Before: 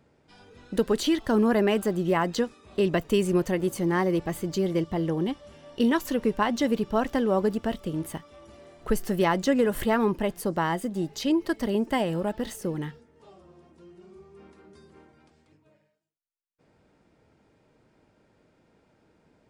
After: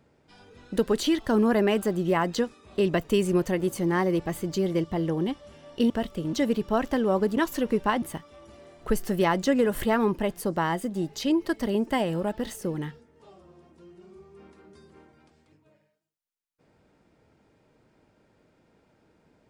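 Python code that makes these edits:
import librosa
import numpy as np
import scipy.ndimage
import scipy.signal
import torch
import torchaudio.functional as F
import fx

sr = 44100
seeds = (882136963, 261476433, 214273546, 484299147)

y = fx.edit(x, sr, fx.swap(start_s=5.9, length_s=0.65, other_s=7.59, other_length_s=0.43), tone=tone)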